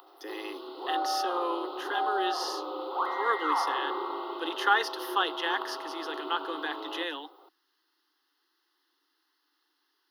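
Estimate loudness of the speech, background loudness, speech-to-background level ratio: -32.5 LUFS, -34.0 LUFS, 1.5 dB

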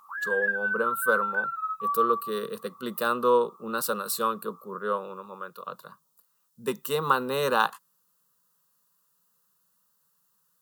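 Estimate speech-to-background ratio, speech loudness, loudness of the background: 0.0 dB, -28.5 LUFS, -28.5 LUFS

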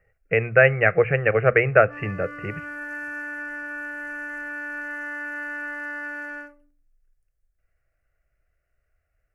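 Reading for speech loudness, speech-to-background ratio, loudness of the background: -20.0 LUFS, 12.5 dB, -32.5 LUFS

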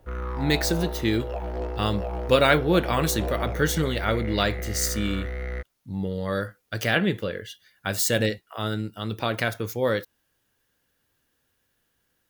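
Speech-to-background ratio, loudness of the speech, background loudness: 7.0 dB, -25.5 LUFS, -32.5 LUFS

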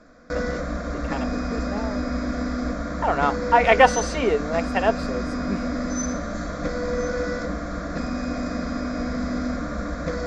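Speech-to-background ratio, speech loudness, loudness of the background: 6.0 dB, -22.0 LUFS, -28.0 LUFS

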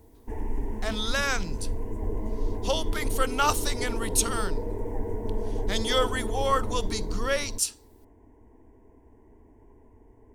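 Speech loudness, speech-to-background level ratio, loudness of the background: -28.5 LUFS, 5.5 dB, -34.0 LUFS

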